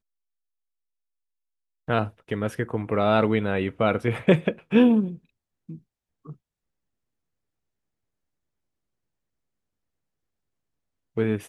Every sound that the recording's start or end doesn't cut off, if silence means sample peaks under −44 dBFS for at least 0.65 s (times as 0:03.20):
0:01.88–0:06.33